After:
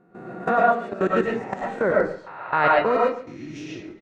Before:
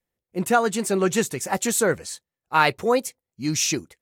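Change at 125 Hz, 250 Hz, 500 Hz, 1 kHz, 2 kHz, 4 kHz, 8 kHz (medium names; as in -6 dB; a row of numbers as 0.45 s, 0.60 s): -4.5 dB, -3.0 dB, +2.0 dB, +2.5 dB, +0.5 dB, -11.5 dB, under -25 dB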